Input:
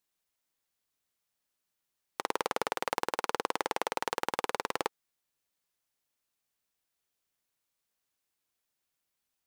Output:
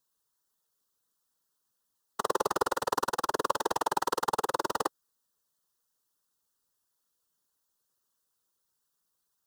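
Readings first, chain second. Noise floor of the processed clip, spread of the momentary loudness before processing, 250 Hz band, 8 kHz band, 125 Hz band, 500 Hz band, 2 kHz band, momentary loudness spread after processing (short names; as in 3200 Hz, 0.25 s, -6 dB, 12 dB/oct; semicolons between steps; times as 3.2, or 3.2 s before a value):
-80 dBFS, 3 LU, +4.0 dB, +4.5 dB, +4.5 dB, +3.5 dB, -0.5 dB, 4 LU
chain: fixed phaser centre 450 Hz, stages 8; whisperiser; gain +5.5 dB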